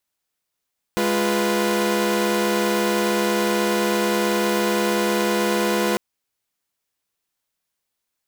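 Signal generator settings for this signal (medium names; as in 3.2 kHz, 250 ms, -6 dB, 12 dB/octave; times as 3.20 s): chord G#3/F4/B4 saw, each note -20.5 dBFS 5.00 s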